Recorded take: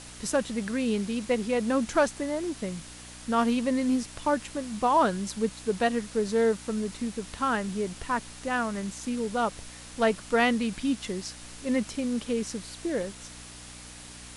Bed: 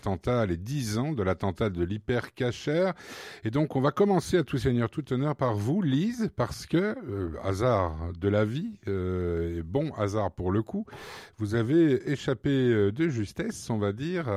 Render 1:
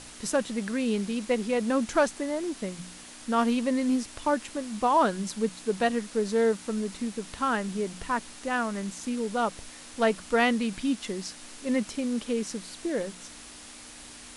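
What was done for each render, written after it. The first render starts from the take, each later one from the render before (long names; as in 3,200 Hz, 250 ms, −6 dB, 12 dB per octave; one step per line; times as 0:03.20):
hum removal 60 Hz, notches 3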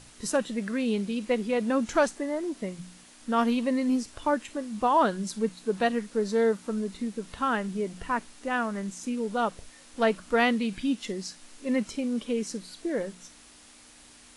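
noise reduction from a noise print 7 dB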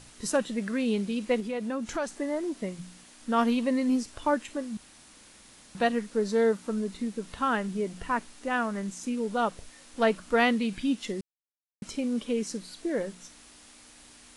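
0:01.40–0:02.18: downward compressor 2 to 1, threshold −33 dBFS
0:04.77–0:05.75: fill with room tone
0:11.21–0:11.82: silence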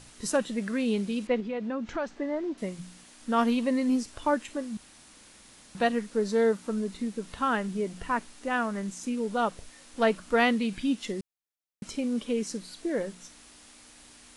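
0:01.27–0:02.58: high-frequency loss of the air 170 metres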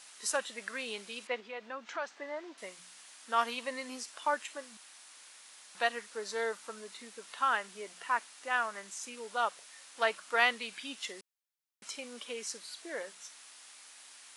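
high-pass filter 880 Hz 12 dB per octave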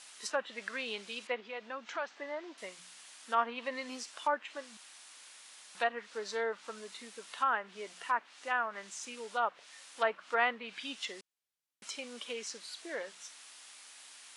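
treble cut that deepens with the level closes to 1,700 Hz, closed at −28.5 dBFS
parametric band 3,100 Hz +2 dB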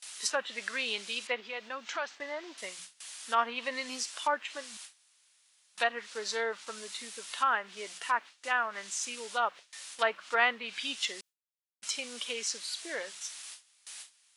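noise gate with hold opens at −42 dBFS
high-shelf EQ 2,100 Hz +10 dB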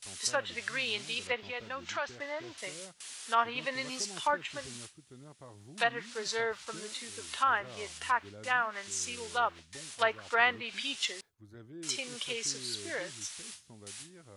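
mix in bed −25 dB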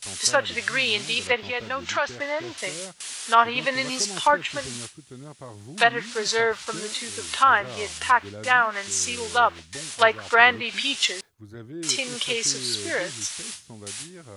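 level +10.5 dB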